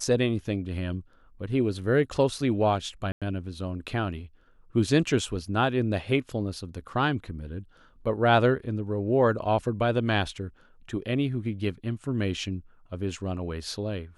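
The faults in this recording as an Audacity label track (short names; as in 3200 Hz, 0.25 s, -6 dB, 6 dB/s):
3.120000	3.220000	gap 96 ms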